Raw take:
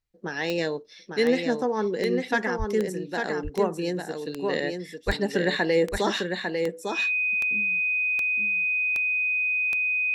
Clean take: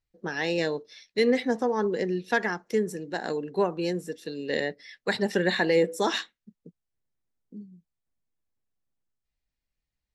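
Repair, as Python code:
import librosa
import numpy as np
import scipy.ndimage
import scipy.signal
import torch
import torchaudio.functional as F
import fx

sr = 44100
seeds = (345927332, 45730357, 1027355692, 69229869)

y = fx.fix_declick_ar(x, sr, threshold=10.0)
y = fx.notch(y, sr, hz=2500.0, q=30.0)
y = fx.fix_deplosive(y, sr, at_s=(2.58, 5.06))
y = fx.fix_echo_inverse(y, sr, delay_ms=850, level_db=-5.0)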